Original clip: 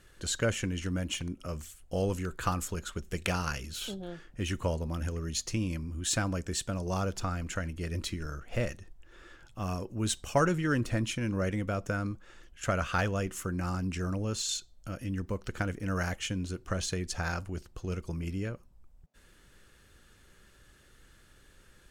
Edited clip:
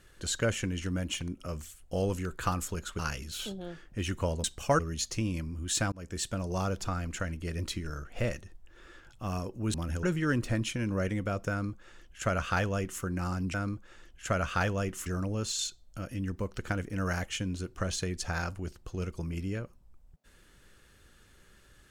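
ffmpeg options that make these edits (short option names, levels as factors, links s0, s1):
-filter_complex "[0:a]asplit=9[s0][s1][s2][s3][s4][s5][s6][s7][s8];[s0]atrim=end=2.992[s9];[s1]atrim=start=3.408:end=4.862[s10];[s2]atrim=start=10.098:end=10.452[s11];[s3]atrim=start=5.148:end=6.28,asetpts=PTS-STARTPTS,afade=t=out:st=1.128:d=0.004:c=hsin[s12];[s4]atrim=start=6.28:end=10.102,asetpts=PTS-STARTPTS,afade=t=in:d=0.41:c=qsin[s13];[s5]atrim=start=4.858:end=5.152[s14];[s6]atrim=start=10.448:end=13.962[s15];[s7]atrim=start=11.918:end=13.442[s16];[s8]atrim=start=13.958[s17];[s9][s10]acrossfade=d=0.004:c1=hsin:c2=hsin[s18];[s18][s11]acrossfade=d=0.004:c1=hsin:c2=hsin[s19];[s12][s13]concat=n=2:v=0:a=1[s20];[s19][s20]acrossfade=d=0.004:c1=hsin:c2=hsin[s21];[s21][s14]acrossfade=d=0.004:c1=hsin:c2=hsin[s22];[s22][s15]acrossfade=d=0.004:c1=hsin:c2=hsin[s23];[s23][s16]acrossfade=d=0.004:c1=hsin:c2=hsin[s24];[s24][s17]acrossfade=d=0.004:c1=hsin:c2=hsin"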